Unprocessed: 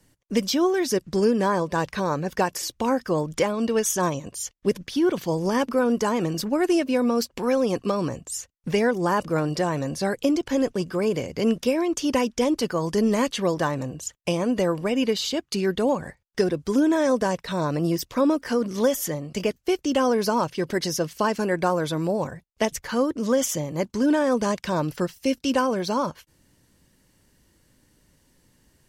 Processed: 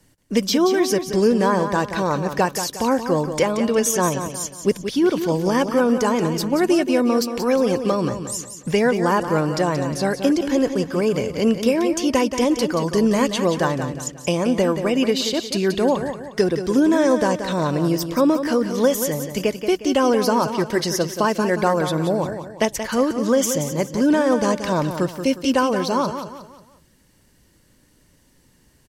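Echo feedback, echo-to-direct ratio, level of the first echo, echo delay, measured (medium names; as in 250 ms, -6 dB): 39%, -8.5 dB, -9.0 dB, 179 ms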